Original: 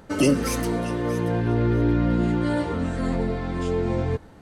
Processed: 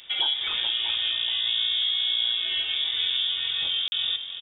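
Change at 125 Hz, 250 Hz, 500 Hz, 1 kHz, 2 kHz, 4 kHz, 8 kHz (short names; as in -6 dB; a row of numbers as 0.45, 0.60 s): under -35 dB, under -35 dB, under -25 dB, -12.5 dB, +0.5 dB, +21.0 dB, n/a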